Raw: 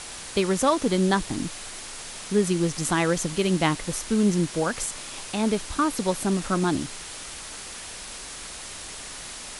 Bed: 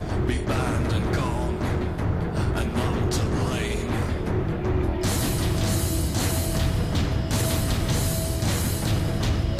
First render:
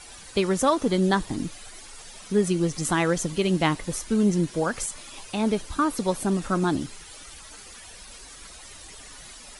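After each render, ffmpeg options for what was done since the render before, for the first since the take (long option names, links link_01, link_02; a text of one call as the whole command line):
ffmpeg -i in.wav -af "afftdn=noise_reduction=12:noise_floor=-39" out.wav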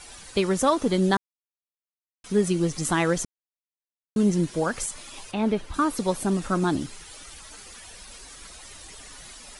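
ffmpeg -i in.wav -filter_complex "[0:a]asettb=1/sr,asplit=3[link_01][link_02][link_03];[link_01]atrim=end=5.314[link_04];[link_02]atrim=start=5.31:end=5.74,asetpts=PTS-STARTPTS,afade=type=in:duration=0.004:curve=qsin,afade=type=out:start_time=0.426:duration=0.004:curve=qsin,acrossover=split=3600[link_05][link_06];[link_06]acompressor=threshold=-55dB:ratio=4:attack=1:release=60[link_07];[link_05][link_07]amix=inputs=2:normalize=0[link_08];[link_03]atrim=start=5.736[link_09];[link_04][link_08]acrossfade=duration=0.004:curve1=hsin:curve2=qsin[link_10];[link_10][link_09]acrossfade=duration=0.004:curve1=qsin:curve2=hsin,asplit=5[link_11][link_12][link_13][link_14][link_15];[link_11]atrim=end=1.17,asetpts=PTS-STARTPTS,afade=type=out:start_time=1.166:duration=0.004:curve=hsin[link_16];[link_12]atrim=start=1.17:end=2.24,asetpts=PTS-STARTPTS,volume=0[link_17];[link_13]atrim=start=2.24:end=3.25,asetpts=PTS-STARTPTS,afade=type=in:duration=0.004:curve=hsin,afade=type=out:start_time=1.006:duration=0.004:curve=hsin[link_18];[link_14]atrim=start=3.25:end=4.16,asetpts=PTS-STARTPTS,volume=0[link_19];[link_15]atrim=start=4.16,asetpts=PTS-STARTPTS,afade=type=in:duration=0.004:curve=hsin[link_20];[link_16][link_17][link_18][link_19][link_20]concat=n=5:v=0:a=1" out.wav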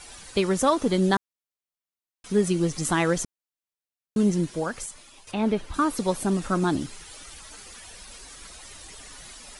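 ffmpeg -i in.wav -filter_complex "[0:a]asplit=2[link_01][link_02];[link_01]atrim=end=5.27,asetpts=PTS-STARTPTS,afade=type=out:start_time=4.19:duration=1.08:silence=0.251189[link_03];[link_02]atrim=start=5.27,asetpts=PTS-STARTPTS,afade=type=in:duration=0.004:curve=hsin:silence=0.251189[link_04];[link_03][link_04]concat=n=2:v=0:a=1" out.wav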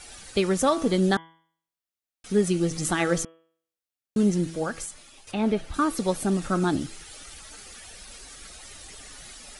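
ffmpeg -i in.wav -af "bandreject=frequency=1000:width=7.6,bandreject=frequency=163.6:width_type=h:width=4,bandreject=frequency=327.2:width_type=h:width=4,bandreject=frequency=490.8:width_type=h:width=4,bandreject=frequency=654.4:width_type=h:width=4,bandreject=frequency=818:width_type=h:width=4,bandreject=frequency=981.6:width_type=h:width=4,bandreject=frequency=1145.2:width_type=h:width=4,bandreject=frequency=1308.8:width_type=h:width=4,bandreject=frequency=1472.4:width_type=h:width=4,bandreject=frequency=1636:width_type=h:width=4,bandreject=frequency=1799.6:width_type=h:width=4,bandreject=frequency=1963.2:width_type=h:width=4,bandreject=frequency=2126.8:width_type=h:width=4,bandreject=frequency=2290.4:width_type=h:width=4,bandreject=frequency=2454:width_type=h:width=4,bandreject=frequency=2617.6:width_type=h:width=4,bandreject=frequency=2781.2:width_type=h:width=4,bandreject=frequency=2944.8:width_type=h:width=4,bandreject=frequency=3108.4:width_type=h:width=4,bandreject=frequency=3272:width_type=h:width=4,bandreject=frequency=3435.6:width_type=h:width=4" out.wav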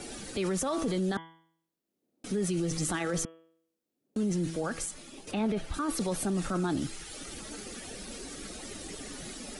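ffmpeg -i in.wav -filter_complex "[0:a]acrossover=split=190|390|4400[link_01][link_02][link_03][link_04];[link_02]acompressor=mode=upward:threshold=-31dB:ratio=2.5[link_05];[link_01][link_05][link_03][link_04]amix=inputs=4:normalize=0,alimiter=limit=-23dB:level=0:latency=1:release=10" out.wav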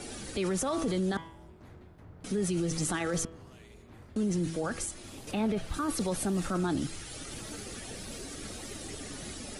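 ffmpeg -i in.wav -i bed.wav -filter_complex "[1:a]volume=-26.5dB[link_01];[0:a][link_01]amix=inputs=2:normalize=0" out.wav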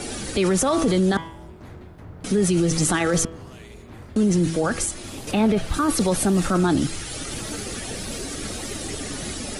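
ffmpeg -i in.wav -af "volume=10.5dB" out.wav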